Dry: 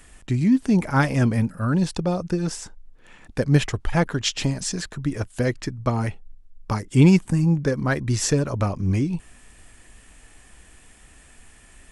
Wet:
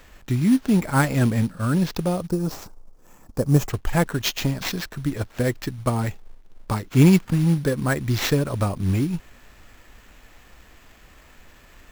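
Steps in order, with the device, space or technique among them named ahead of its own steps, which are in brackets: early companding sampler (sample-rate reducer 9600 Hz, jitter 0%; companded quantiser 6-bit); 2.27–3.7 band shelf 2500 Hz -11.5 dB

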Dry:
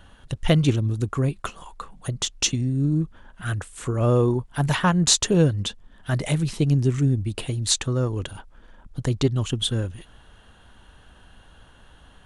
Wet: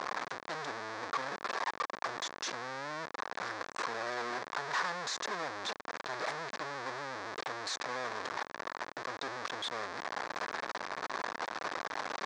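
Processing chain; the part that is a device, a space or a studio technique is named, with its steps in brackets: Wiener smoothing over 25 samples; home computer beeper (infinite clipping; speaker cabinet 550–5800 Hz, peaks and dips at 1100 Hz +5 dB, 1700 Hz +6 dB, 2900 Hz -9 dB); gain -7.5 dB

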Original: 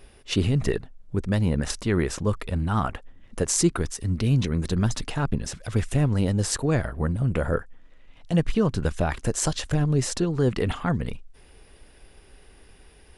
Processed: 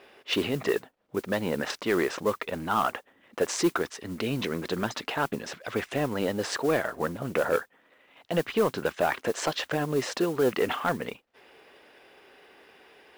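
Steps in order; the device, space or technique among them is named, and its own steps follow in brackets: carbon microphone (BPF 400–3300 Hz; soft clip -19.5 dBFS, distortion -17 dB; modulation noise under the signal 21 dB); gain +5 dB

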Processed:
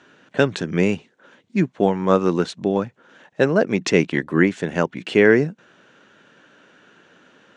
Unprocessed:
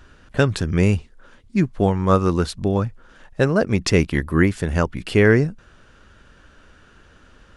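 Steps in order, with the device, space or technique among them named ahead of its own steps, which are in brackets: television speaker (speaker cabinet 170–6800 Hz, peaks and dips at 220 Hz -3 dB, 1200 Hz -5 dB, 4900 Hz -8 dB); gain +2 dB

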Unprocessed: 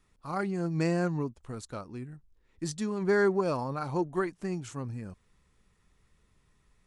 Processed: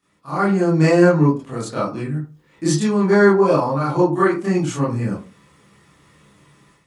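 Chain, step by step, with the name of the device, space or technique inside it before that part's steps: far laptop microphone (reverb RT60 0.30 s, pre-delay 23 ms, DRR -10 dB; HPF 160 Hz 12 dB/oct; AGC gain up to 10.5 dB); gain -1 dB

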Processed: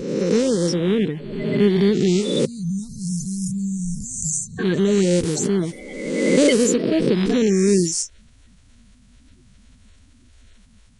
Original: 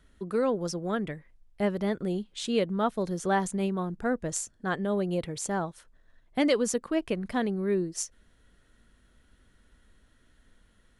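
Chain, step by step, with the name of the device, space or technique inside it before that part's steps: spectral swells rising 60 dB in 1.50 s; band shelf 950 Hz -10 dB; 2.45–4.59 inverse Chebyshev band-stop 310–3200 Hz, stop band 40 dB; dynamic EQ 180 Hz, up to +7 dB, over -45 dBFS, Q 1.6; clip after many re-uploads (LPF 8900 Hz 24 dB/oct; bin magnitudes rounded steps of 30 dB); gain +7.5 dB

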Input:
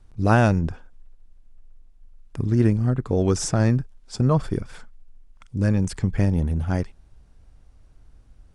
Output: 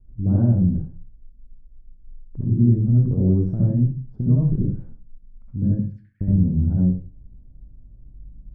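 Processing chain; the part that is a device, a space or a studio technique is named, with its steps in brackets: 5.72–6.21 steep high-pass 1500 Hz 72 dB/oct; television next door (compressor 4:1, threshold -21 dBFS, peak gain reduction 8.5 dB; LPF 260 Hz 12 dB/oct; reverb RT60 0.40 s, pre-delay 62 ms, DRR -5 dB)

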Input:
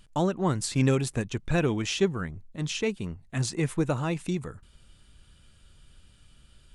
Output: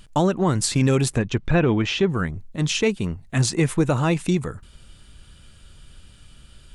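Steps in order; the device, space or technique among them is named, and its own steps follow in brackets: clipper into limiter (hard clip -13 dBFS, distortion -42 dB; limiter -18.5 dBFS, peak gain reduction 5.5 dB); 1.1–2.09 treble ducked by the level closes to 2800 Hz, closed at -25.5 dBFS; gain +8.5 dB

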